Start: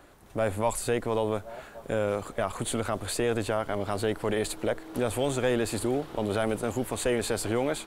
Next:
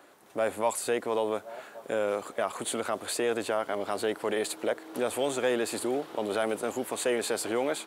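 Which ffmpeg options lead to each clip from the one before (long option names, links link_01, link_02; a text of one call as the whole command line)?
ffmpeg -i in.wav -af "highpass=290" out.wav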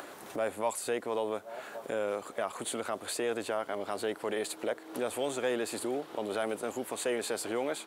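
ffmpeg -i in.wav -af "acompressor=mode=upward:threshold=-29dB:ratio=2.5,volume=-4dB" out.wav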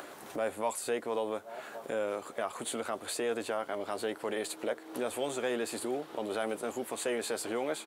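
ffmpeg -i in.wav -filter_complex "[0:a]asplit=2[link_01][link_02];[link_02]adelay=13,volume=-11.5dB[link_03];[link_01][link_03]amix=inputs=2:normalize=0,volume=-1dB" out.wav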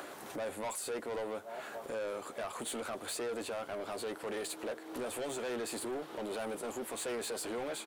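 ffmpeg -i in.wav -af "asoftclip=type=tanh:threshold=-35dB,volume=1dB" out.wav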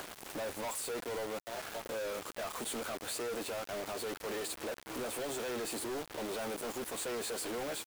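ffmpeg -i in.wav -af "acrusher=bits=6:mix=0:aa=0.000001" out.wav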